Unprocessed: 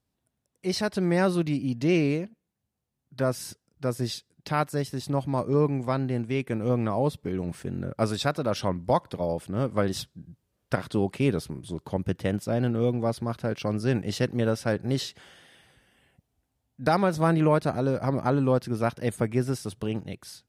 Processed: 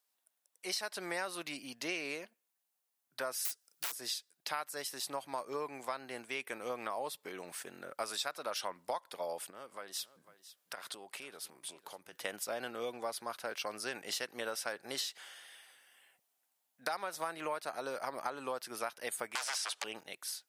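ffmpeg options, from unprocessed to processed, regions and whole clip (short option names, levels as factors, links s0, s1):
-filter_complex "[0:a]asettb=1/sr,asplit=3[s0][s1][s2];[s0]atrim=end=3.454[s3];[s1]atrim=start=3.45:end=3.92,asetpts=PTS-STARTPTS,afade=t=in:d=0.004:c=qsin,afade=t=out:st=0.466:d=0.004:c=qsin,highshelf=f=2300:g=8.5,aeval=exprs='(mod(26.6*val(0)+1,2)-1)/26.6':c=same[s4];[s2]atrim=start=3.916[s5];[s3][s4]acrossfade=d=0.004:c1=hsin:c2=qsin[s6];[s6][s5]acrossfade=d=0.004:c1=qsin:c2=hsin,asettb=1/sr,asplit=3[s7][s8][s9];[s7]atrim=end=9.504[s10];[s8]atrim=start=9.5:end=12.13,asetpts=PTS-STARTPTS,afade=t=in:d=0.004:c=qsin,afade=t=out:st=2.626:d=0.004:c=qsin,acompressor=threshold=0.0126:ratio=3:attack=3.2:release=140:knee=1:detection=peak,aecho=1:1:500:0.15,atrim=end_sample=115983[s11];[s9]atrim=start=12.126[s12];[s10][s11]acrossfade=d=0.004:c1=hsin:c2=qsin[s13];[s13][s12]acrossfade=d=0.004:c1=qsin:c2=hsin,asettb=1/sr,asplit=3[s14][s15][s16];[s14]atrim=end=19.354[s17];[s15]atrim=start=19.35:end=19.84,asetpts=PTS-STARTPTS,afade=t=in:d=0.004:c=qsin,afade=t=out:st=0.486:d=0.004:c=qsin,acrossover=split=2200|5800[s18][s19][s20];[s18]acompressor=threshold=0.0141:ratio=4[s21];[s19]acompressor=threshold=0.00141:ratio=4[s22];[s20]acompressor=threshold=0.00126:ratio=4[s23];[s21][s22][s23]amix=inputs=3:normalize=0,aeval=exprs='0.0708*sin(PI/2*8.91*val(0)/0.0708)':c=same,highpass=780,lowpass=7500[s24];[s16]atrim=start=19.836[s25];[s17][s24]acrossfade=d=0.004:c1=hsin:c2=qsin[s26];[s26][s25]acrossfade=d=0.004:c1=qsin:c2=hsin,highpass=850,highshelf=f=9200:g=11,acompressor=threshold=0.02:ratio=6"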